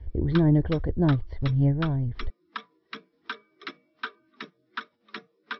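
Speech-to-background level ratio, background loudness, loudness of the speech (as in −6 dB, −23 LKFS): 16.5 dB, −41.0 LKFS, −24.5 LKFS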